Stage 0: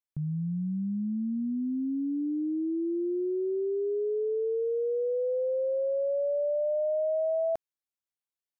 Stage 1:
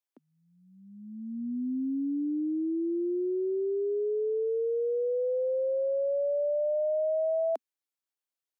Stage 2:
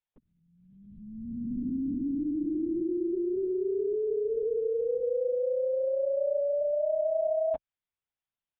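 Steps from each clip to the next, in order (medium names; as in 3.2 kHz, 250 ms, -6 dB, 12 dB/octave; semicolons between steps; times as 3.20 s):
steep high-pass 240 Hz 72 dB/octave
LPC vocoder at 8 kHz whisper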